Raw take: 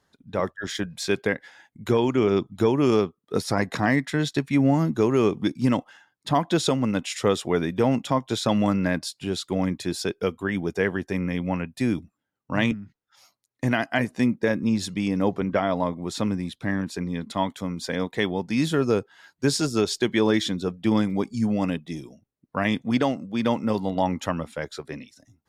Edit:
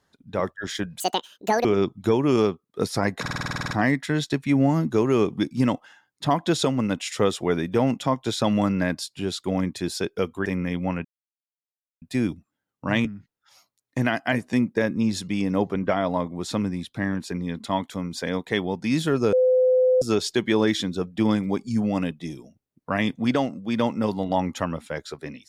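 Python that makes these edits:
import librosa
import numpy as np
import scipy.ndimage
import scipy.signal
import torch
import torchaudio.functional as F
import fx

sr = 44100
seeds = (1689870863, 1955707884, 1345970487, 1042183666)

y = fx.edit(x, sr, fx.speed_span(start_s=1.0, length_s=1.19, speed=1.84),
    fx.stutter(start_s=3.75, slice_s=0.05, count=11),
    fx.cut(start_s=10.5, length_s=0.59),
    fx.insert_silence(at_s=11.68, length_s=0.97),
    fx.bleep(start_s=18.99, length_s=0.69, hz=510.0, db=-15.0), tone=tone)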